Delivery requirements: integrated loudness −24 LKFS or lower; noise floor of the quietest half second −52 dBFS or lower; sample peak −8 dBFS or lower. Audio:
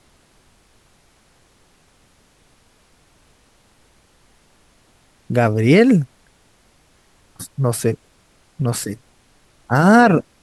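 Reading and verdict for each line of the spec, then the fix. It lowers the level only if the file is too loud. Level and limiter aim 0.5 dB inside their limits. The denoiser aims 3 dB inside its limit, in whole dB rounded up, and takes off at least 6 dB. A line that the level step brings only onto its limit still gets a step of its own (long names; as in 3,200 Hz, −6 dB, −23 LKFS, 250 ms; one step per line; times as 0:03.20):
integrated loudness −16.5 LKFS: out of spec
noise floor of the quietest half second −56 dBFS: in spec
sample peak −2.0 dBFS: out of spec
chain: level −8 dB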